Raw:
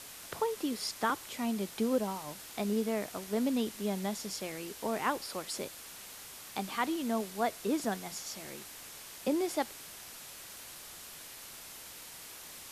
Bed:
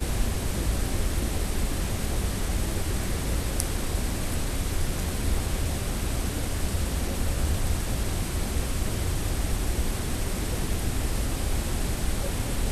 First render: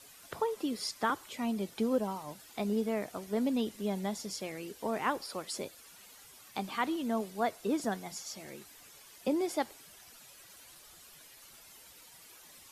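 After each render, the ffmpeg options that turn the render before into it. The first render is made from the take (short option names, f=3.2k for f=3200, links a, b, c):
-af "afftdn=nr=11:nf=-49"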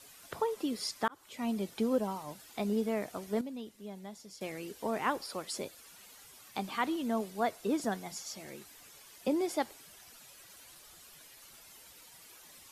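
-filter_complex "[0:a]asplit=4[a][b][c][d];[a]atrim=end=1.08,asetpts=PTS-STARTPTS,afade=t=out:st=1.076:d=0.004:c=hsin[e];[b]atrim=start=1.08:end=3.412,asetpts=PTS-STARTPTS,afade=t=in:d=0.41[f];[c]atrim=start=3.408:end=4.412,asetpts=PTS-STARTPTS,volume=-11dB[g];[d]atrim=start=4.408[h];[e][f]concat=n=2:v=0:a=1[i];[i][g]acrossfade=d=0.004:c1=hsin:c2=hsin[j];[j][h]acrossfade=d=0.004:c1=hsin:c2=hsin"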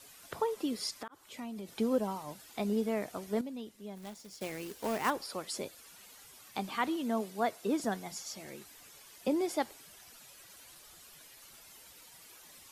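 -filter_complex "[0:a]asettb=1/sr,asplit=3[a][b][c];[a]atrim=end=0.904[d];[b]atrim=start=0.9:end=1.7,asetpts=PTS-STARTPTS,afade=t=in:d=0.004:c=qsin,afade=t=out:st=0.796:d=0.004:c=qsin,acompressor=threshold=-38dB:ratio=10:attack=3.2:release=140:knee=1:detection=peak[e];[c]atrim=start=1.696[f];[d][e]acrossfade=d=0.004:c1=hsin:c2=qsin[g];[g][f]acrossfade=d=0.004:c1=qsin:c2=hsin,asplit=3[h][i][j];[h]afade=t=out:st=3.96:d=0.02[k];[i]acrusher=bits=2:mode=log:mix=0:aa=0.000001,afade=t=in:st=3.96:d=0.02,afade=t=out:st=5.09:d=0.02[l];[j]afade=t=in:st=5.09:d=0.02[m];[k][l][m]amix=inputs=3:normalize=0,asettb=1/sr,asplit=3[n][o][p];[n]atrim=end=6.884[q];[o]atrim=start=6.88:end=7.8,asetpts=PTS-STARTPTS,afade=t=in:d=0.004:c=qsin,afade=t=out:st=0.916:d=0.004:c=qsin,highpass=110[r];[p]atrim=start=7.796[s];[q][r]acrossfade=d=0.004:c1=hsin:c2=qsin[t];[t][s]acrossfade=d=0.004:c1=qsin:c2=hsin"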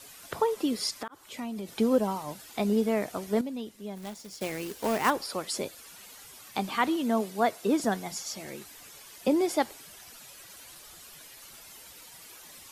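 -af "volume=6dB"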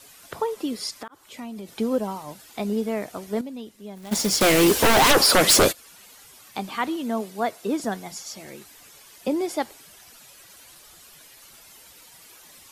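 -filter_complex "[0:a]asplit=3[a][b][c];[a]afade=t=out:st=4.11:d=0.02[d];[b]aeval=exprs='0.266*sin(PI/2*8.91*val(0)/0.266)':c=same,afade=t=in:st=4.11:d=0.02,afade=t=out:st=5.71:d=0.02[e];[c]afade=t=in:st=5.71:d=0.02[f];[d][e][f]amix=inputs=3:normalize=0"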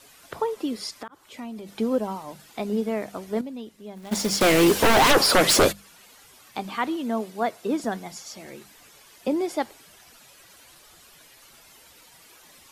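-af "highshelf=f=5k:g=-5.5,bandreject=f=50:t=h:w=6,bandreject=f=100:t=h:w=6,bandreject=f=150:t=h:w=6,bandreject=f=200:t=h:w=6"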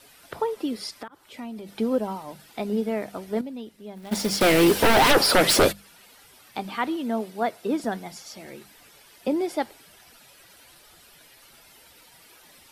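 -af "equalizer=f=6.8k:t=o:w=0.37:g=-5.5,bandreject=f=1.1k:w=14"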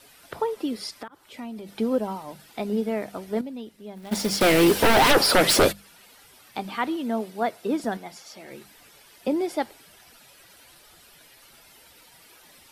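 -filter_complex "[0:a]asettb=1/sr,asplit=3[a][b][c];[a]atrim=end=7.974[d];[b]atrim=start=7.97:end=8.51,asetpts=PTS-STARTPTS,afade=t=in:d=0.004:c=qsin,afade=t=out:st=0.536:d=0.004:c=qsin,bass=f=250:g=-7,treble=f=4k:g=-4[e];[c]atrim=start=8.506[f];[d][e]acrossfade=d=0.004:c1=hsin:c2=qsin[g];[g][f]acrossfade=d=0.004:c1=qsin:c2=hsin"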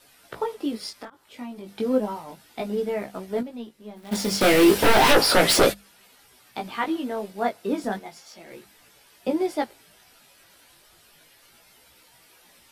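-filter_complex "[0:a]asplit=2[a][b];[b]aeval=exprs='sgn(val(0))*max(abs(val(0))-0.00841,0)':c=same,volume=-6dB[c];[a][c]amix=inputs=2:normalize=0,flanger=delay=15.5:depth=5.1:speed=0.33"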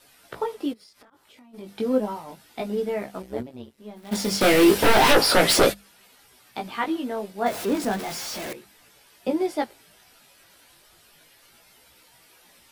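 -filter_complex "[0:a]asplit=3[a][b][c];[a]afade=t=out:st=0.72:d=0.02[d];[b]acompressor=threshold=-49dB:ratio=10:attack=3.2:release=140:knee=1:detection=peak,afade=t=in:st=0.72:d=0.02,afade=t=out:st=1.53:d=0.02[e];[c]afade=t=in:st=1.53:d=0.02[f];[d][e][f]amix=inputs=3:normalize=0,asettb=1/sr,asplit=3[g][h][i];[g]atrim=end=3.224[j];[h]atrim=start=3.22:end=3.78,asetpts=PTS-STARTPTS,afade=t=in:d=0.004:c=qsin,afade=t=out:st=0.556:d=0.004:c=qsin,tremolo=f=130:d=0.919[k];[i]atrim=start=3.776[l];[j][k]acrossfade=d=0.004:c1=hsin:c2=qsin[m];[m][l]acrossfade=d=0.004:c1=qsin:c2=hsin,asettb=1/sr,asplit=3[n][o][p];[n]atrim=end=7.464[q];[o]atrim=start=7.46:end=8.53,asetpts=PTS-STARTPTS,afade=t=in:d=0.004:c=qsin,afade=t=out:st=1.066:d=0.004:c=qsin,aeval=exprs='val(0)+0.5*0.0376*sgn(val(0))':c=same[r];[p]atrim=start=8.526[s];[q][r]acrossfade=d=0.004:c1=hsin:c2=qsin[t];[t][s]acrossfade=d=0.004:c1=qsin:c2=hsin"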